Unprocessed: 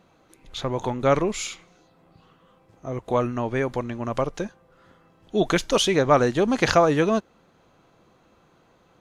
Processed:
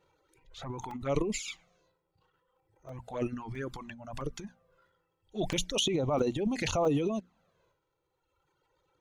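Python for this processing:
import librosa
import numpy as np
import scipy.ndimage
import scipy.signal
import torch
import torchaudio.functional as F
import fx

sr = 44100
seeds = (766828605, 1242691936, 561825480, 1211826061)

y = fx.hum_notches(x, sr, base_hz=60, count=4)
y = fx.dereverb_blind(y, sr, rt60_s=2.0)
y = fx.transient(y, sr, attack_db=-4, sustain_db=11)
y = fx.env_flanger(y, sr, rest_ms=2.2, full_db=-17.5)
y = fx.buffer_crackle(y, sr, first_s=0.91, period_s=0.66, block=128, kind='zero')
y = y * librosa.db_to_amplitude(-8.0)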